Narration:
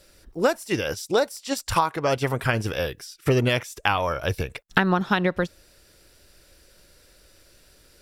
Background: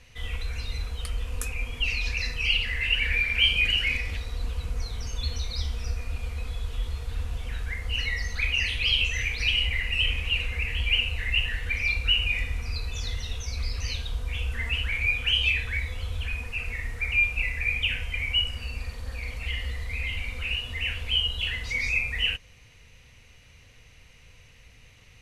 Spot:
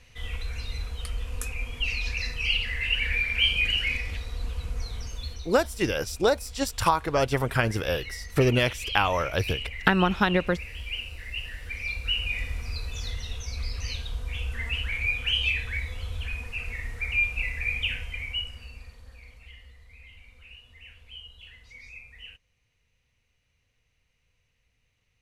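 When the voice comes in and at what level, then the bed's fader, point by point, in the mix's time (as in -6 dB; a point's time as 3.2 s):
5.10 s, -1.0 dB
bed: 4.98 s -1.5 dB
5.48 s -10 dB
11.31 s -10 dB
12.52 s -2 dB
17.87 s -2 dB
19.74 s -19.5 dB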